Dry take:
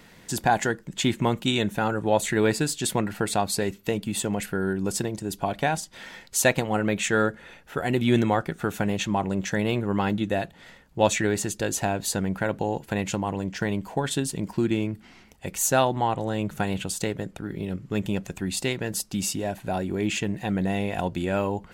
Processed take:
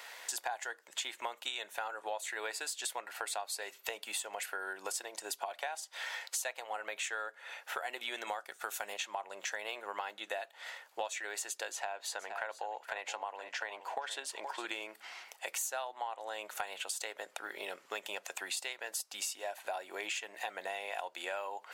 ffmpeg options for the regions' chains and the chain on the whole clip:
-filter_complex "[0:a]asettb=1/sr,asplit=3[s0][s1][s2];[s0]atrim=end=8.274[s3];[s1]atrim=start=8.27:end=8.94,asetpts=PTS-STARTPTS,afade=t=in:d=0.004:c=qsin,afade=t=out:st=0.666:d=0.004:c=qsin,agate=range=0.0224:threshold=0.0126:ratio=3:release=100:detection=peak,bass=f=250:g=7,treble=f=4000:g=8[s4];[s2]atrim=start=8.936[s5];[s3][s4]acrossfade=d=0.004:c1=hsin:c2=qsin[s6];[s6][s5]acrossfade=d=0.004:c1=qsin:c2=hsin,asettb=1/sr,asplit=3[s7][s8][s9];[s7]atrim=end=11.724[s10];[s8]atrim=start=11.72:end=14.67,asetpts=PTS-STARTPTS,afade=t=in:d=0.004:c=qsin,afade=t=out:st=2.946:d=0.004:c=qsin,highpass=f=380:p=1,equalizer=f=14000:w=0.3:g=-13.5,aecho=1:1:470:0.178,atrim=end_sample=130095[s11];[s9]atrim=start=14.666[s12];[s10][s11]acrossfade=d=0.004:c1=hsin:c2=qsin[s13];[s13][s12]acrossfade=d=0.004:c1=qsin:c2=hsin,highpass=f=630:w=0.5412,highpass=f=630:w=1.3066,acompressor=threshold=0.00891:ratio=8,volume=1.78"

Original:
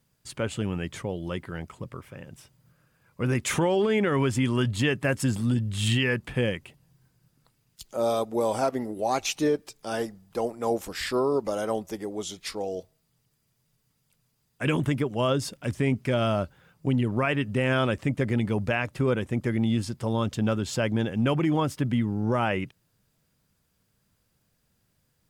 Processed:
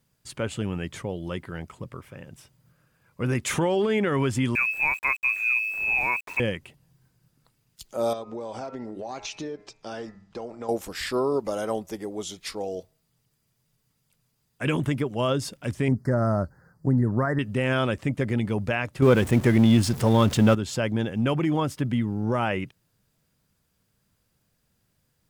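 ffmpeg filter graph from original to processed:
-filter_complex "[0:a]asettb=1/sr,asplit=3[s0][s1][s2];[s0]atrim=end=4.554[s3];[s1]atrim=start=4.55:end=6.4,asetpts=PTS-STARTPTS,afade=t=in:d=0.004:c=qsin,afade=t=out:st=1.846:d=0.004:c=qsin,lowpass=f=2300:t=q:w=0.5098,lowpass=f=2300:t=q:w=0.6013,lowpass=f=2300:t=q:w=0.9,lowpass=f=2300:t=q:w=2.563,afreqshift=-2700,aeval=exprs='val(0)*gte(abs(val(0)),0.00891)':c=same[s4];[s2]atrim=start=6.396[s5];[s3][s4]acrossfade=d=0.004:c1=hsin:c2=qsin[s6];[s6][s5]acrossfade=d=0.004:c1=qsin:c2=hsin,asettb=1/sr,asplit=3[s7][s8][s9];[s7]atrim=end=8.134[s10];[s8]atrim=start=8.13:end=10.69,asetpts=PTS-STARTPTS,afade=t=in:d=0.004:c=qsin,afade=t=out:st=2.556:d=0.004:c=qsin,lowpass=f=6500:w=0.5412,lowpass=f=6500:w=1.3066,bandreject=f=103.8:t=h:w=4,bandreject=f=207.6:t=h:w=4,bandreject=f=311.4:t=h:w=4,bandreject=f=415.2:t=h:w=4,bandreject=f=519:t=h:w=4,bandreject=f=622.8:t=h:w=4,bandreject=f=726.6:t=h:w=4,bandreject=f=830.4:t=h:w=4,bandreject=f=934.2:t=h:w=4,bandreject=f=1038:t=h:w=4,bandreject=f=1141.8:t=h:w=4,bandreject=f=1245.6:t=h:w=4,bandreject=f=1349.4:t=h:w=4,bandreject=f=1453.2:t=h:w=4,bandreject=f=1557:t=h:w=4,bandreject=f=1660.8:t=h:w=4,bandreject=f=1764.6:t=h:w=4,bandreject=f=1868.4:t=h:w=4,bandreject=f=1972.2:t=h:w=4,bandreject=f=2076:t=h:w=4,bandreject=f=2179.8:t=h:w=4,bandreject=f=2283.6:t=h:w=4,bandreject=f=2387.4:t=h:w=4,bandreject=f=2491.2:t=h:w=4,bandreject=f=2595:t=h:w=4,acompressor=threshold=0.0282:ratio=6:attack=3.2:release=140:knee=1:detection=peak[s11];[s9]atrim=start=10.686[s12];[s10][s11]acrossfade=d=0.004:c1=hsin:c2=qsin[s13];[s13][s12]acrossfade=d=0.004:c1=qsin:c2=hsin,asettb=1/sr,asplit=3[s14][s15][s16];[s14]atrim=end=15.884[s17];[s15]atrim=start=15.88:end=17.39,asetpts=PTS-STARTPTS,afade=t=in:d=0.004:c=qsin,afade=t=out:st=1.506:d=0.004:c=qsin,asuperstop=centerf=2900:order=12:qfactor=1.2,bass=f=250:g=4,treble=f=4000:g=-5[s18];[s16]atrim=start=17.386[s19];[s17][s18]acrossfade=d=0.004:c1=hsin:c2=qsin[s20];[s20][s19]acrossfade=d=0.004:c1=qsin:c2=hsin,asettb=1/sr,asplit=3[s21][s22][s23];[s21]atrim=end=19.024[s24];[s22]atrim=start=19.02:end=20.55,asetpts=PTS-STARTPTS,afade=t=in:d=0.004:c=qsin,afade=t=out:st=1.526:d=0.004:c=qsin,aeval=exprs='val(0)+0.5*0.0126*sgn(val(0))':c=same,acontrast=75[s25];[s23]atrim=start=20.546[s26];[s24][s25]acrossfade=d=0.004:c1=hsin:c2=qsin[s27];[s27][s26]acrossfade=d=0.004:c1=qsin:c2=hsin"

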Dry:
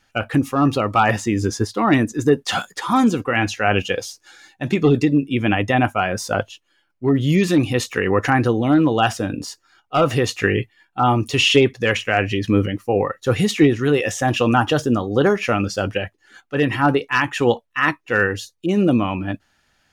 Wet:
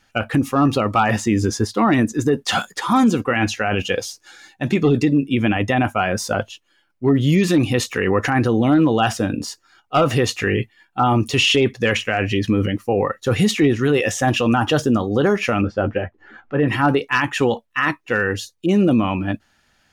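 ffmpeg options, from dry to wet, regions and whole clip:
-filter_complex "[0:a]asettb=1/sr,asplit=3[s0][s1][s2];[s0]atrim=end=15.614[s3];[s1]atrim=start=15.61:end=16.68,asetpts=PTS-STARTPTS,afade=t=in:d=0.004:c=qsin,afade=t=out:st=1.066:d=0.004:c=qsin,lowpass=1500,acompressor=mode=upward:threshold=0.0141:ratio=2.5:attack=3.2:release=140:knee=2.83:detection=peak,asplit=2[s4][s5];[s5]adelay=13,volume=0.355[s6];[s4][s6]amix=inputs=2:normalize=0,atrim=end_sample=47187[s7];[s2]atrim=start=16.676[s8];[s3][s7]acrossfade=d=0.004:c1=hsin:c2=qsin[s9];[s9][s8]acrossfade=d=0.004:c1=qsin:c2=hsin,equalizer=f=220:t=o:w=0.23:g=3.5,alimiter=limit=0.316:level=0:latency=1:release=19,volume=1.26"

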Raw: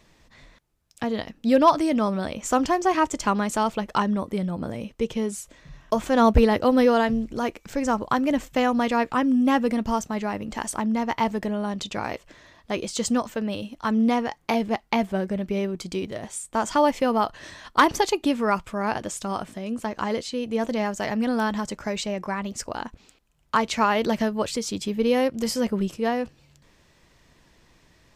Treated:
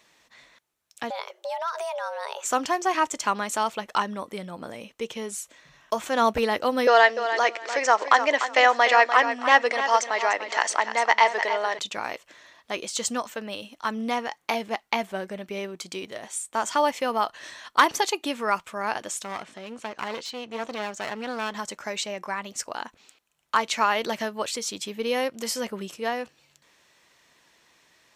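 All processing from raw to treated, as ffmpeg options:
-filter_complex "[0:a]asettb=1/sr,asplit=3[s0][s1][s2];[s0]atrim=end=1.104[s3];[s1]atrim=start=1.1:end=2.45,asetpts=PTS-STARTPTS,afade=t=in:d=0.004:c=qsin,afade=t=out:st=1.346:d=0.004:c=qsin,acompressor=threshold=0.0562:ratio=10:attack=3.2:release=140:knee=1:detection=peak,afreqshift=340[s4];[s2]atrim=start=2.446[s5];[s3][s4]acrossfade=d=0.004:c1=hsin:c2=qsin[s6];[s6][s5]acrossfade=d=0.004:c1=qsin:c2=hsin,asettb=1/sr,asplit=3[s7][s8][s9];[s7]atrim=end=6.874[s10];[s8]atrim=start=6.87:end=11.79,asetpts=PTS-STARTPTS,afade=t=in:d=0.004:c=qsin,afade=t=out:st=4.916:d=0.004:c=qsin,acontrast=64,highpass=f=390:w=0.5412,highpass=f=390:w=1.3066,equalizer=f=700:t=q:w=4:g=3,equalizer=f=1900:t=q:w=4:g=7,equalizer=f=4700:t=q:w=4:g=3,lowpass=f=6800:w=0.5412,lowpass=f=6800:w=1.3066,aecho=1:1:296|592|888:0.316|0.0632|0.0126,atrim=end_sample=216972[s11];[s9]atrim=start=11.786[s12];[s10][s11]acrossfade=d=0.004:c1=hsin:c2=qsin[s13];[s13][s12]acrossfade=d=0.004:c1=qsin:c2=hsin,asettb=1/sr,asplit=3[s14][s15][s16];[s14]atrim=end=19.244[s17];[s15]atrim=start=19.24:end=21.55,asetpts=PTS-STARTPTS,afade=t=in:d=0.004:c=qsin,afade=t=out:st=2.306:d=0.004:c=qsin,lowpass=6200,aeval=exprs='clip(val(0),-1,0.0224)':c=same[s18];[s16]atrim=start=21.546[s19];[s17][s18]acrossfade=d=0.004:c1=hsin:c2=qsin[s20];[s20][s19]acrossfade=d=0.004:c1=qsin:c2=hsin,highpass=f=930:p=1,bandreject=f=4900:w=17,volume=1.26"

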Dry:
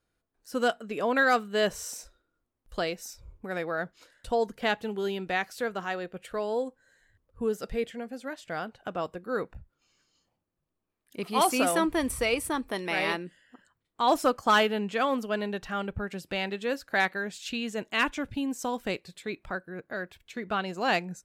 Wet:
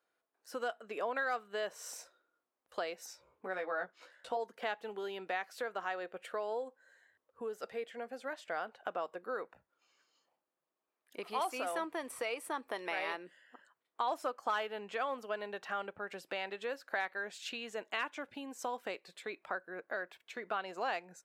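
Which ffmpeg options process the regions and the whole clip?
-filter_complex "[0:a]asettb=1/sr,asplit=3[s0][s1][s2];[s0]atrim=end=3.064[s3];[s1]atrim=start=3.06:end=4.37,asetpts=PTS-STARTPTS,afade=t=in:d=0.004:c=qsin,afade=t=out:st=1.306:d=0.004:c=qsin,highshelf=f=10000:g=-10.5,asplit=2[s4][s5];[s5]adelay=16,volume=0.631[s6];[s4][s6]amix=inputs=2:normalize=0,atrim=end_sample=57771[s7];[s2]atrim=start=4.366[s8];[s3][s7]acrossfade=d=0.004:c1=hsin:c2=qsin[s9];[s9][s8]acrossfade=d=0.004:c1=qsin:c2=hsin,acompressor=threshold=0.02:ratio=4,highpass=560,highshelf=f=2700:g=-10.5,volume=1.41"

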